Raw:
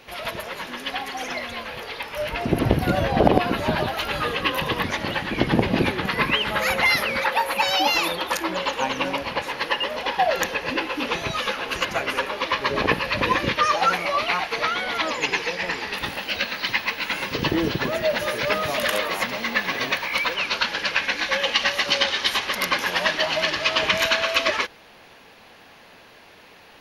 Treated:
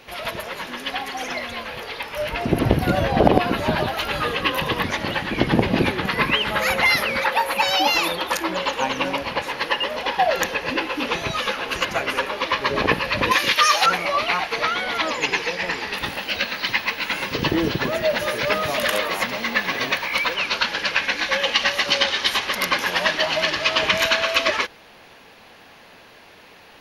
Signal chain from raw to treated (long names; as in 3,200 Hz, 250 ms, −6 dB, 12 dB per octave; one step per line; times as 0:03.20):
0:13.31–0:13.86: spectral tilt +4 dB per octave
level +1.5 dB